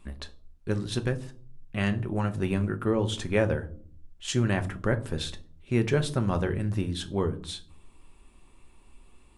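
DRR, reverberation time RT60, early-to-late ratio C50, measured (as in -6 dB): 7.0 dB, 0.50 s, 17.5 dB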